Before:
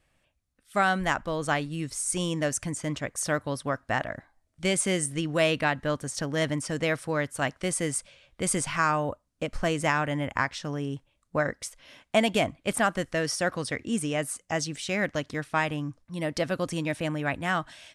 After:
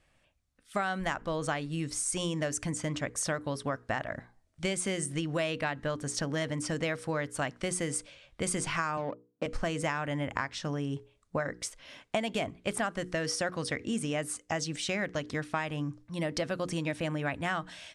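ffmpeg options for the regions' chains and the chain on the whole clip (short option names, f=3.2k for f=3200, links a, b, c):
-filter_complex "[0:a]asettb=1/sr,asplit=3[a][b][c];[a]atrim=end=8.974[d];[b]atrim=start=8.97:end=9.46,asetpts=PTS-STARTPTS,afade=t=in:d=0.004:c=qsin,afade=t=out:st=0.486:d=0.004:c=qsin,adynamicsmooth=sensitivity=4:basefreq=870,highpass=f=150:w=0.5412,highpass=f=150:w=1.3066[e];[c]atrim=start=9.456[f];[d][e]acrossfade=d=0.004:c1=hsin:c2=qsin[g];[g][f]acrossfade=d=0.004:c1=qsin:c2=hsin,lowpass=9.6k,bandreject=f=60:t=h:w=6,bandreject=f=120:t=h:w=6,bandreject=f=180:t=h:w=6,bandreject=f=240:t=h:w=6,bandreject=f=300:t=h:w=6,bandreject=f=360:t=h:w=6,bandreject=f=420:t=h:w=6,bandreject=f=480:t=h:w=6,acompressor=threshold=-30dB:ratio=5,volume=1.5dB"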